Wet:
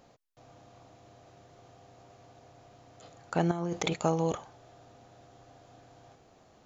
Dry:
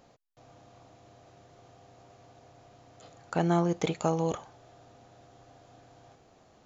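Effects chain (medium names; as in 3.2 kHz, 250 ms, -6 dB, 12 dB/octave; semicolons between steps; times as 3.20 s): 3.51–3.96 s: compressor with a negative ratio -32 dBFS, ratio -1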